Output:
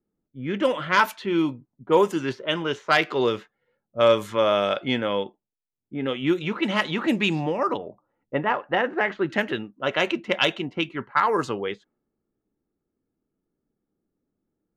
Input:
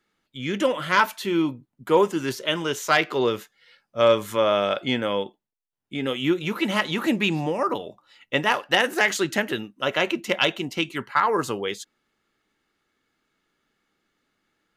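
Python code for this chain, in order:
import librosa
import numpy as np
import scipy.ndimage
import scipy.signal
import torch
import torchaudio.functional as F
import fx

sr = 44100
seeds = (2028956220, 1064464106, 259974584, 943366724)

y = fx.lowpass(x, sr, hz=1600.0, slope=12, at=(7.77, 9.3))
y = fx.env_lowpass(y, sr, base_hz=410.0, full_db=-17.0)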